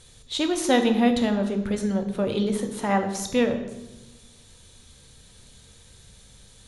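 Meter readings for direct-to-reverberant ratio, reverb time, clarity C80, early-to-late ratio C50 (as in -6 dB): 5.5 dB, 1.1 s, 11.0 dB, 9.0 dB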